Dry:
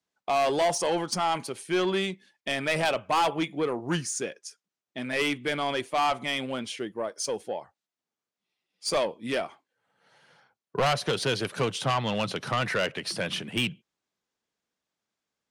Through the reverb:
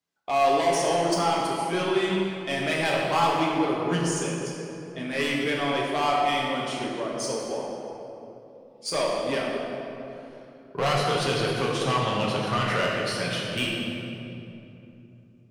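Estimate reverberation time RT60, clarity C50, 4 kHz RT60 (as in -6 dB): 3.0 s, -0.5 dB, 1.8 s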